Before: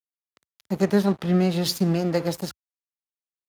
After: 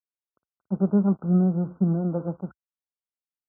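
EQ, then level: Chebyshev low-pass 1.5 kHz, order 10; dynamic bell 190 Hz, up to +7 dB, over -34 dBFS, Q 2.2; distance through air 340 m; -5.0 dB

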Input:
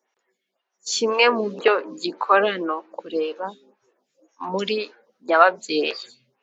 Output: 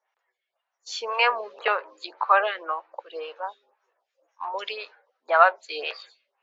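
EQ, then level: high-pass 630 Hz 24 dB/octave; low-pass 3 kHz 6 dB/octave; distance through air 88 m; 0.0 dB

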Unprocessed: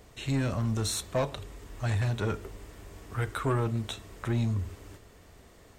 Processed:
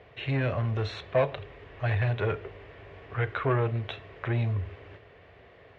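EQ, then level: cabinet simulation 120–2800 Hz, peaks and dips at 310 Hz -8 dB, 910 Hz -6 dB, 1.3 kHz -6 dB; peaking EQ 210 Hz -14.5 dB 0.63 oct; +7.0 dB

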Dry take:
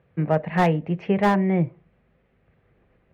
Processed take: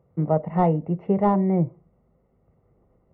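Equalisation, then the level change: Savitzky-Golay filter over 65 samples; 0.0 dB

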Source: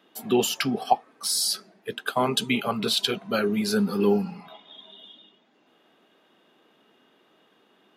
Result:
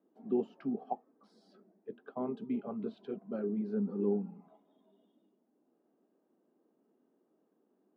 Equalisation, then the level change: ladder band-pass 310 Hz, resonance 25%; +1.5 dB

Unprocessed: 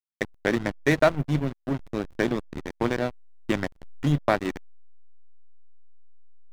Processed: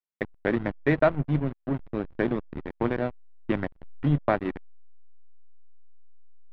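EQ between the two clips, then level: distance through air 430 m; 0.0 dB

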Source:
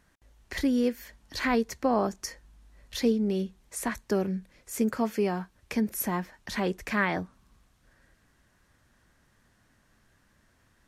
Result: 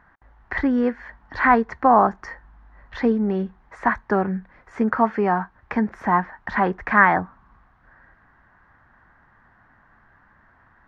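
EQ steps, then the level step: distance through air 63 m; tape spacing loss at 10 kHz 32 dB; high-order bell 1.2 kHz +13 dB; +6.0 dB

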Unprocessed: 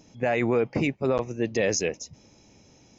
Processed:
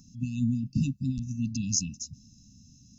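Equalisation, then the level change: brick-wall FIR band-stop 280–2600 Hz; static phaser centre 1.3 kHz, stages 4; +4.5 dB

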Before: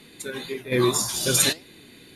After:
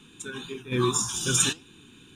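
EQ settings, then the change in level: static phaser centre 3 kHz, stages 8; 0.0 dB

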